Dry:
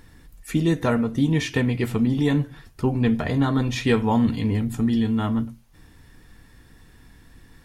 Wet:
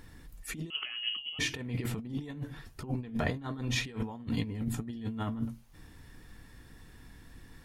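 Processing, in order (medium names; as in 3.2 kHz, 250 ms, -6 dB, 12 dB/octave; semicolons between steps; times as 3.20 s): crackle 13 per s -52 dBFS; compressor with a negative ratio -26 dBFS, ratio -0.5; 0.70–1.39 s: frequency inversion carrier 3.1 kHz; trim -8 dB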